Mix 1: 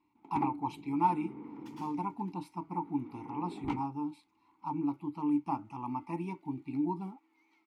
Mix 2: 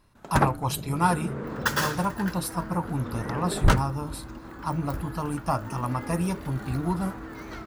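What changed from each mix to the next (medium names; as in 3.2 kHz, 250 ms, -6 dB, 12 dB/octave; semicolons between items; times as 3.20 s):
speech -5.0 dB; second sound: remove differentiator; master: remove vowel filter u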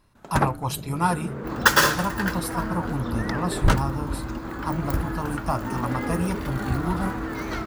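second sound +9.0 dB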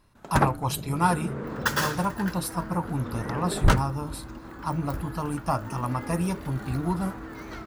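second sound -9.0 dB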